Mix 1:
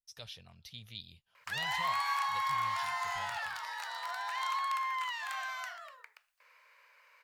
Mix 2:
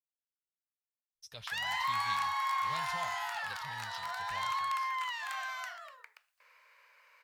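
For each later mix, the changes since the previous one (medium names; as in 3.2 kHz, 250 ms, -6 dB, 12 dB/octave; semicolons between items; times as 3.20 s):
speech: entry +1.15 s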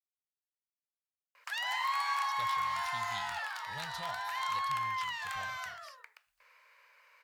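speech: entry +1.05 s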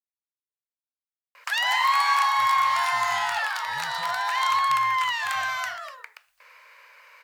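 background +11.5 dB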